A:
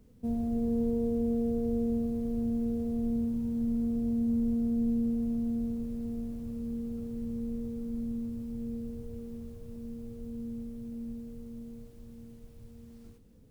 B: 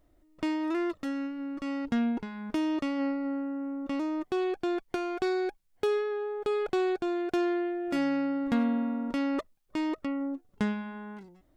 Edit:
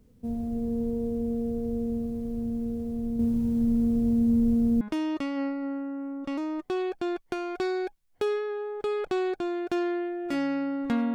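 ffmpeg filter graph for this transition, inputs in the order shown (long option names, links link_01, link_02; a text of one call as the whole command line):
ffmpeg -i cue0.wav -i cue1.wav -filter_complex "[0:a]asettb=1/sr,asplit=3[link_01][link_02][link_03];[link_01]atrim=end=3.194[link_04];[link_02]atrim=start=3.19:end=4.81,asetpts=PTS-STARTPTS,afade=type=in:duration=0.004:curve=qsin,afade=type=out:start_time=1.616:duration=0.004:curve=qsin,acontrast=54[link_05];[link_03]atrim=start=4.806[link_06];[link_04][link_05]acrossfade=duration=0.004:curve1=hsin:curve2=qsin[link_07];[link_07][link_06]acrossfade=duration=0.004:curve1=qsin:curve2=hsin,apad=whole_dur=11.14,atrim=end=11.14,atrim=end=4.812[link_08];[1:a]atrim=start=2.428:end=8.76[link_09];[link_08][link_09]acrossfade=duration=0.004:curve1=hsin:curve2=hsin" out.wav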